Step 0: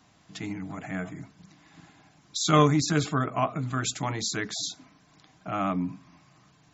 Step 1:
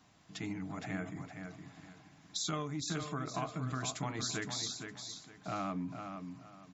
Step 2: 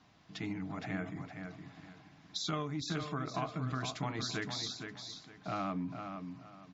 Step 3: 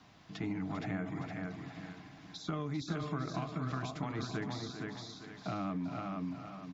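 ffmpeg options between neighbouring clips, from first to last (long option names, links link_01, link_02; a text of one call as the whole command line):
ffmpeg -i in.wav -af "acompressor=threshold=-29dB:ratio=16,aecho=1:1:464|928|1392:0.447|0.116|0.0302,volume=-4.5dB" out.wav
ffmpeg -i in.wav -af "lowpass=frequency=5500:width=0.5412,lowpass=frequency=5500:width=1.3066,volume=1dB" out.wav
ffmpeg -i in.wav -filter_complex "[0:a]acrossover=split=390|1500[link_01][link_02][link_03];[link_01]acompressor=threshold=-40dB:ratio=4[link_04];[link_02]acompressor=threshold=-47dB:ratio=4[link_05];[link_03]acompressor=threshold=-55dB:ratio=4[link_06];[link_04][link_05][link_06]amix=inputs=3:normalize=0,aecho=1:1:397:0.316,volume=4.5dB" out.wav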